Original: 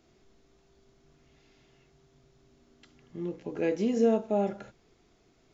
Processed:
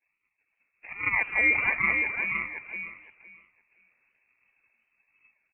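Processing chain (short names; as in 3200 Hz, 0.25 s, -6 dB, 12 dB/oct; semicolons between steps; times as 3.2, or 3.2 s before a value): whole clip reversed; notches 50/100/150/200/250 Hz; in parallel at +1 dB: compressor, threshold -41 dBFS, peak gain reduction 20 dB; on the sum: expander -45 dBFS; decimation with a swept rate 31×, swing 100% 1.2 Hz; feedback echo 0.514 s, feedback 18%, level -5 dB; inverted band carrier 2600 Hz; warbling echo 83 ms, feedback 52%, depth 200 cents, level -20.5 dB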